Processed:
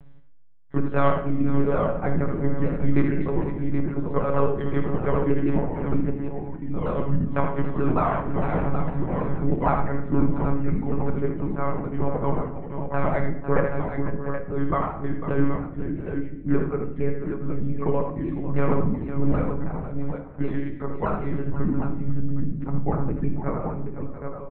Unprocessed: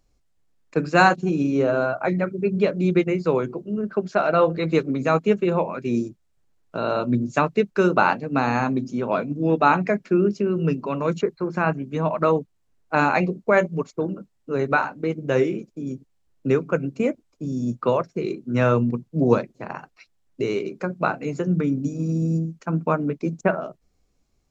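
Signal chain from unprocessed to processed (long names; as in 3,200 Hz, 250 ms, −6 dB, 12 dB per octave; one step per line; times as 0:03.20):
pitch shifter swept by a sawtooth −6 semitones, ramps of 156 ms
low-pass filter 2,000 Hz 12 dB per octave
multi-tap delay 50/77/502/687/773 ms −18/−6.5/−13/−16/−8 dB
one-pitch LPC vocoder at 8 kHz 140 Hz
in parallel at −2.5 dB: downward compressor, threshold −27 dBFS, peak gain reduction 17 dB
on the sum: parametric band 170 Hz +9 dB 0.41 octaves
rectangular room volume 240 cubic metres, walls mixed, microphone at 0.48 metres
reversed playback
upward compression, threshold −22 dBFS
reversed playback
level −6.5 dB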